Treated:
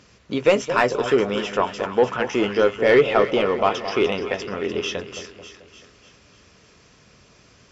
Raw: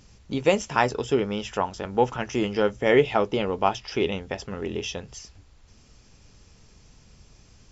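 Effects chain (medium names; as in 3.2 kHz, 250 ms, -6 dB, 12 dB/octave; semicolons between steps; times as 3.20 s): high-pass 57 Hz; peaking EQ 840 Hz -9.5 dB 0.27 oct; overdrive pedal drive 17 dB, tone 1.7 kHz, clips at -3 dBFS; on a send: two-band feedback delay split 1.1 kHz, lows 218 ms, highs 298 ms, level -10 dB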